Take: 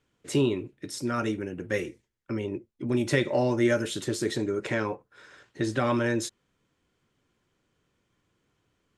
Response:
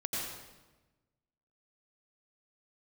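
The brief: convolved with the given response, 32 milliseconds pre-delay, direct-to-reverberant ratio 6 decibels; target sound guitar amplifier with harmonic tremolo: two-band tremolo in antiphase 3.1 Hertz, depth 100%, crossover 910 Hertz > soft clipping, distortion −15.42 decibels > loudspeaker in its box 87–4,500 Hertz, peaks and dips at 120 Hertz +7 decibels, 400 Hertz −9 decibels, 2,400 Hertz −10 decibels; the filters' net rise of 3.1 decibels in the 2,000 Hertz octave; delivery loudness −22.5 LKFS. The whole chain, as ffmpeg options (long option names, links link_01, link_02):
-filter_complex "[0:a]equalizer=frequency=2000:width_type=o:gain=6.5,asplit=2[link_01][link_02];[1:a]atrim=start_sample=2205,adelay=32[link_03];[link_02][link_03]afir=irnorm=-1:irlink=0,volume=-10dB[link_04];[link_01][link_04]amix=inputs=2:normalize=0,acrossover=split=910[link_05][link_06];[link_05]aeval=exprs='val(0)*(1-1/2+1/2*cos(2*PI*3.1*n/s))':channel_layout=same[link_07];[link_06]aeval=exprs='val(0)*(1-1/2-1/2*cos(2*PI*3.1*n/s))':channel_layout=same[link_08];[link_07][link_08]amix=inputs=2:normalize=0,asoftclip=threshold=-22dB,highpass=87,equalizer=frequency=120:width_type=q:width=4:gain=7,equalizer=frequency=400:width_type=q:width=4:gain=-9,equalizer=frequency=2400:width_type=q:width=4:gain=-10,lowpass=frequency=4500:width=0.5412,lowpass=frequency=4500:width=1.3066,volume=12dB"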